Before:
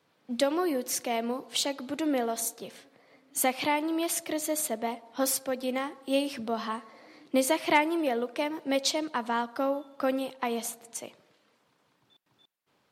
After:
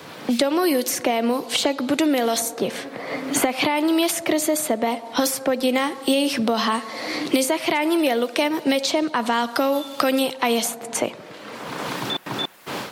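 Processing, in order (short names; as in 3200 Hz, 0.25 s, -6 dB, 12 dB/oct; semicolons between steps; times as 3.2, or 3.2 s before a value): AGC gain up to 12.5 dB; limiter -11 dBFS, peak gain reduction 9.5 dB; three-band squash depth 100%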